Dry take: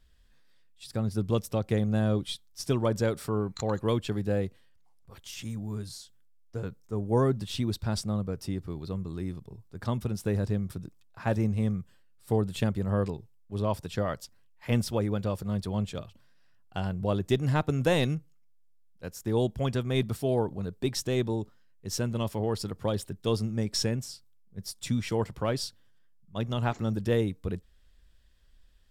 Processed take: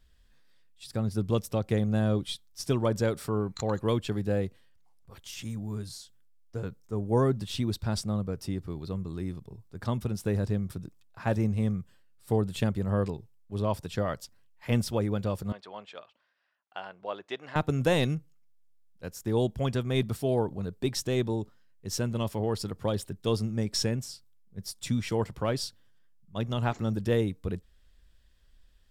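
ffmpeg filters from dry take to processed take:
-filter_complex "[0:a]asettb=1/sr,asplit=3[s0][s1][s2];[s0]atrim=end=15.524[s3];[s1]atrim=start=15.52:end=17.56,asetpts=PTS-STARTPTS,afade=t=in:d=0.004:c=qsin,afade=t=out:st=2.036:d=0.004:c=qsin,highpass=710,lowpass=3000[s4];[s2]atrim=start=17.556[s5];[s3][s4]acrossfade=d=0.004:c1=hsin:c2=qsin[s6];[s6][s5]acrossfade=d=0.004:c1=qsin:c2=hsin"

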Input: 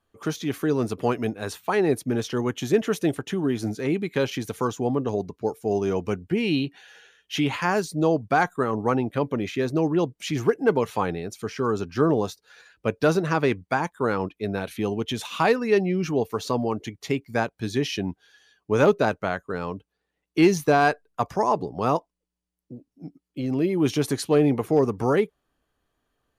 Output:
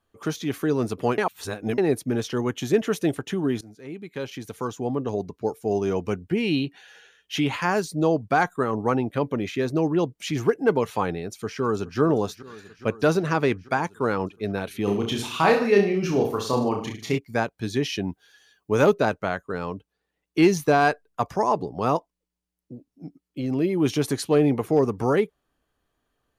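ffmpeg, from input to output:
-filter_complex "[0:a]asplit=2[s0][s1];[s1]afade=t=in:st=11.2:d=0.01,afade=t=out:st=12:d=0.01,aecho=0:1:420|840|1260|1680|2100|2520|2940|3360|3780|4200|4620|5040:0.141254|0.113003|0.0904024|0.0723219|0.0578575|0.046286|0.0370288|0.0296231|0.0236984|0.0189588|0.015167|0.0121336[s2];[s0][s2]amix=inputs=2:normalize=0,asplit=3[s3][s4][s5];[s3]afade=t=out:st=14.86:d=0.02[s6];[s4]aecho=1:1:30|64.5|104.2|149.8|202.3:0.631|0.398|0.251|0.158|0.1,afade=t=in:st=14.86:d=0.02,afade=t=out:st=17.17:d=0.02[s7];[s5]afade=t=in:st=17.17:d=0.02[s8];[s6][s7][s8]amix=inputs=3:normalize=0,asettb=1/sr,asplit=3[s9][s10][s11];[s9]atrim=end=18.074[s12];[s10]atrim=start=18.07:end=18.94,asetpts=PTS-STARTPTS,afade=t=in:d=0.004:c=qsin,afade=t=out:st=0.866:d=0.004:c=qsin,highshelf=f=11000:g=11.5[s13];[s11]atrim=start=18.936[s14];[s12][s13]acrossfade=d=0.004:c1=hsin:c2=qsin[s15];[s15][s14]acrossfade=d=0.004:c1=qsin:c2=hsin,asplit=4[s16][s17][s18][s19];[s16]atrim=end=1.182[s20];[s17]atrim=start=1.178:end=1.782,asetpts=PTS-STARTPTS,areverse[s21];[s18]atrim=start=1.778:end=3.61,asetpts=PTS-STARTPTS,afade=t=out:st=1.828:d=0.004:c=hsin:silence=0.0841395[s22];[s19]atrim=start=3.61,asetpts=PTS-STARTPTS,afade=t=in:d=1.76:silence=0.0841395[s23];[s20][s21]acrossfade=d=0.004:c1=hsin:c2=hsin[s24];[s22][s23]concat=n=2:v=0:a=1[s25];[s24][s25]acrossfade=d=0.004:c1=hsin:c2=hsin"

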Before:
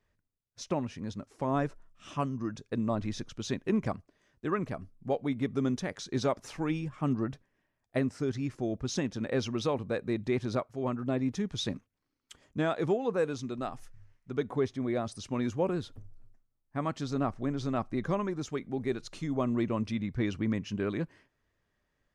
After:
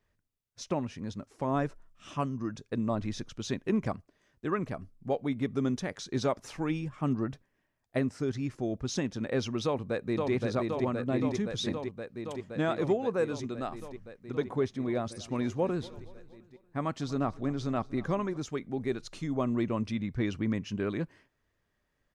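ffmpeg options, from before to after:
-filter_complex "[0:a]asplit=2[s0][s1];[s1]afade=t=in:st=9.65:d=0.01,afade=t=out:st=10.32:d=0.01,aecho=0:1:520|1040|1560|2080|2600|3120|3640|4160|4680|5200|5720|6240:0.749894|0.599915|0.479932|0.383946|0.307157|0.245725|0.19658|0.157264|0.125811|0.100649|0.0805193|0.0644154[s2];[s0][s2]amix=inputs=2:normalize=0,asettb=1/sr,asplit=3[s3][s4][s5];[s3]atrim=end=14.874[s6];[s4]atrim=start=14.87:end=18.37,asetpts=PTS-STARTPTS,afade=t=in:d=0.004:c=qsin,afade=t=out:st=3.496:d=0.004:c=qsin,aecho=1:1:236|472|708|944:0.0891|0.0472|0.025|0.0133,atrim=end_sample=154350[s7];[s5]atrim=start=18.366[s8];[s6][s7]acrossfade=d=0.004:c1=hsin:c2=qsin[s9];[s9][s8]acrossfade=d=0.004:c1=qsin:c2=hsin"

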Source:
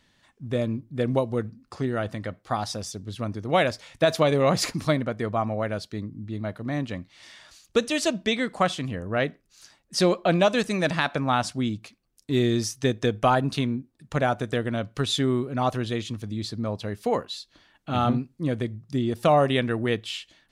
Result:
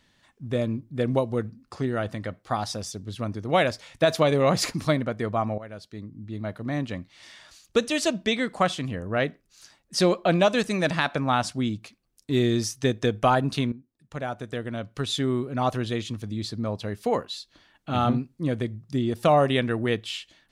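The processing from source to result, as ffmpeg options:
-filter_complex "[0:a]asplit=3[s0][s1][s2];[s0]atrim=end=5.58,asetpts=PTS-STARTPTS,afade=t=out:st=5.576:d=0.004:c=hsin:silence=0.177828[s3];[s1]atrim=start=5.58:end=13.72,asetpts=PTS-STARTPTS,afade=t=in:d=1.01:silence=0.177828,afade=t=out:st=8.136:d=0.004:c=hsin:silence=0.177828[s4];[s2]atrim=start=13.72,asetpts=PTS-STARTPTS,afade=t=in:d=2:silence=0.177828[s5];[s3][s4][s5]concat=n=3:v=0:a=1"

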